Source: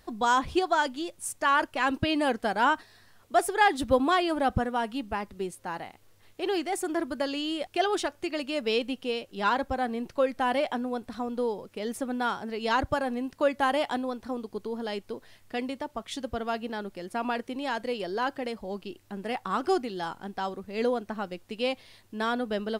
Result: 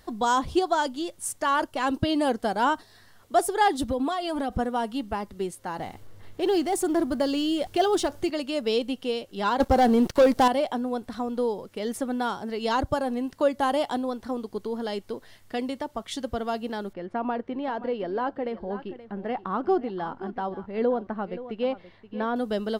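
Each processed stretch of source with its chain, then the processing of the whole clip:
3.88–4.59 comb 4.3 ms, depth 52% + compressor, threshold -26 dBFS
5.78–8.3 G.711 law mismatch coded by mu + low shelf 260 Hz +6 dB + mismatched tape noise reduction decoder only
9.6–10.48 sample leveller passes 3 + mismatched tape noise reduction encoder only
16.93–22.36 LPF 1900 Hz + echo 0.526 s -15 dB
whole clip: notch 2500 Hz, Q 13; dynamic EQ 1900 Hz, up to -8 dB, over -42 dBFS, Q 1.1; gain +3 dB

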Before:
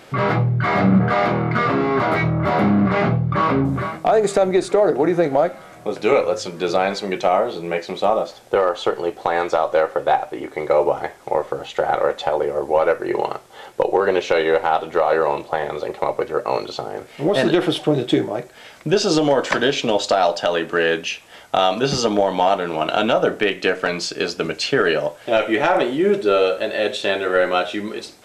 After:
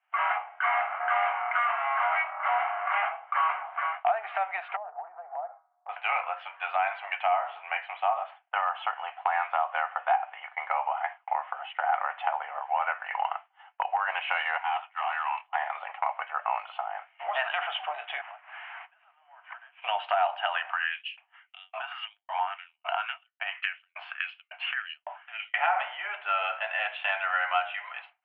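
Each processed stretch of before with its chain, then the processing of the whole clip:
4.76–5.89 LPF 1000 Hz 24 dB/oct + compressor 12:1, threshold -23 dBFS
14.57–15.55 HPF 850 Hz 24 dB/oct + bell 1400 Hz -3.5 dB 0.67 oct + overloaded stage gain 22 dB
18.21–19.82 delta modulation 32 kbps, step -24 dBFS + compressor 20:1, threshold -27 dBFS + BPF 700–2200 Hz
20.62–25.54 compressor 8:1, threshold -23 dBFS + LFO high-pass saw up 1.8 Hz 510–7200 Hz
whole clip: expander -28 dBFS; Chebyshev band-pass 700–3000 Hz, order 5; compressor 2:1, threshold -26 dBFS

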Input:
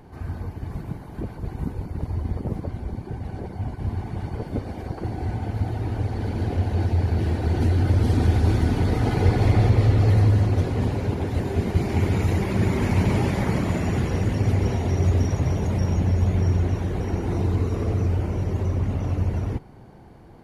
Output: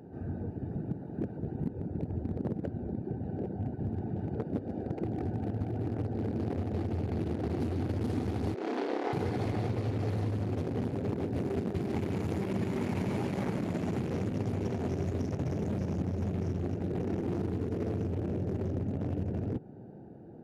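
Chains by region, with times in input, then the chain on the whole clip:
8.54–9.13 HPF 360 Hz 24 dB/oct + air absorption 130 m + flutter echo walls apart 5.3 m, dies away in 0.84 s
whole clip: Wiener smoothing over 41 samples; HPF 160 Hz 12 dB/oct; compressor, threshold -32 dBFS; gain +3 dB

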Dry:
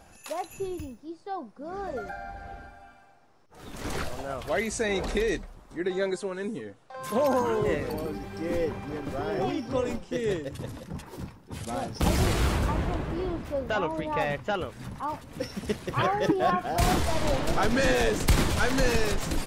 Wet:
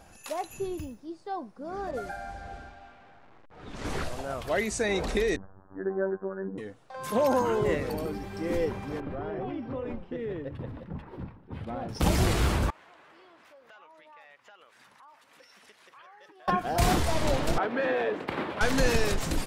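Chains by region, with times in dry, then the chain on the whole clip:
1.91–4.39 delta modulation 64 kbps, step -47 dBFS + low-pass opened by the level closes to 1700 Hz, open at -31 dBFS
5.36–6.58 steep low-pass 1700 Hz 96 dB/oct + robotiser 96.1 Hz
9–11.89 air absorption 460 m + compressor, threshold -30 dBFS
12.7–16.48 HPF 1400 Hz + tilt -3 dB/oct + compressor 4:1, threshold -53 dBFS
17.58–18.61 HPF 340 Hz + air absorption 490 m
whole clip: dry

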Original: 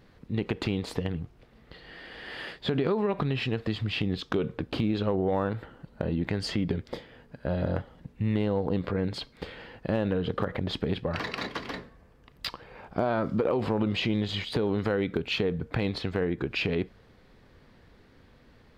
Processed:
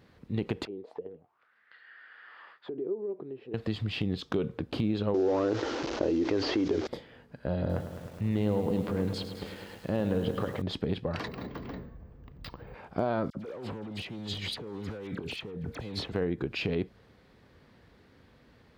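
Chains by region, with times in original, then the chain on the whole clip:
0.65–3.54 auto-wah 370–1800 Hz, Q 5.4, down, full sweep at -25 dBFS + mismatched tape noise reduction encoder only
5.14–6.87 delta modulation 32 kbps, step -44.5 dBFS + resonant low shelf 240 Hz -10 dB, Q 3 + fast leveller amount 70%
7.59–10.62 transient shaper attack -2 dB, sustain +2 dB + lo-fi delay 0.105 s, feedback 80%, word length 8-bit, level -10 dB
11.27–12.74 tilt -3.5 dB/oct + compressor 2:1, threshold -37 dBFS + careless resampling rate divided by 2×, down filtered, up hold
13.3–16.12 hard clip -24.5 dBFS + negative-ratio compressor -36 dBFS + dispersion lows, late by 50 ms, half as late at 2300 Hz
whole clip: HPF 55 Hz; dynamic EQ 1900 Hz, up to -4 dB, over -45 dBFS, Q 0.72; gain -1.5 dB

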